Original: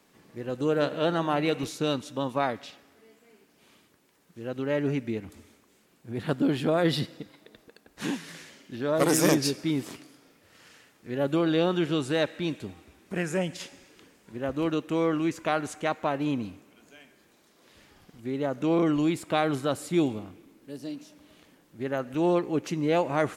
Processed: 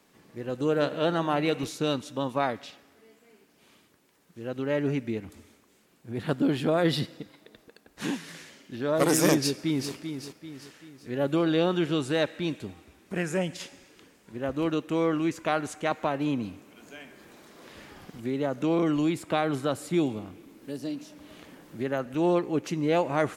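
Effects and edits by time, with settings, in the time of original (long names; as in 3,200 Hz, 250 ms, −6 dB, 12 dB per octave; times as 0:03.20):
0:09.40–0:09.93: delay throw 390 ms, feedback 45%, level −8 dB
0:15.91–0:22.06: multiband upward and downward compressor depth 40%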